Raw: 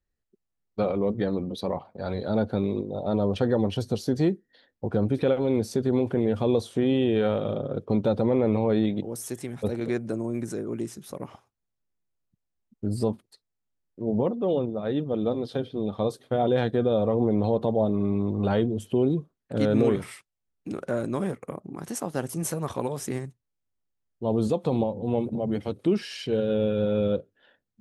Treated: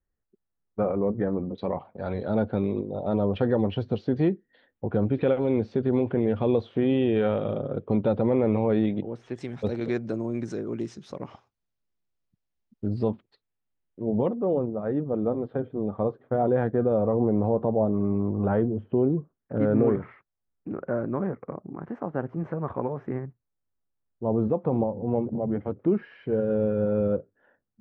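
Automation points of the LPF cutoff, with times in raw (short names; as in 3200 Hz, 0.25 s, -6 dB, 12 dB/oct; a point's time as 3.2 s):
LPF 24 dB/oct
1800 Hz
from 1.58 s 3000 Hz
from 9.36 s 5700 Hz
from 12.88 s 3400 Hz
from 14.33 s 1700 Hz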